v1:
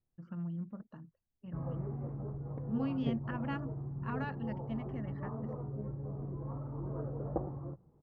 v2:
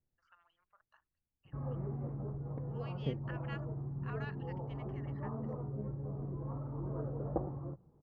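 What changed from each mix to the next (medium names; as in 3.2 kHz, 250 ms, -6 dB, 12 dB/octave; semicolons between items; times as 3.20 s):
first voice: add Bessel high-pass 1.6 kHz, order 4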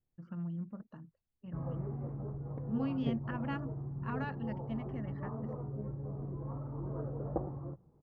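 first voice: remove Bessel high-pass 1.6 kHz, order 4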